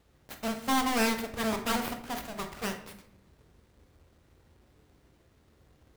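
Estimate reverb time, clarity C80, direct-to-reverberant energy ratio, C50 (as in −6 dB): 0.70 s, 13.0 dB, 5.0 dB, 9.0 dB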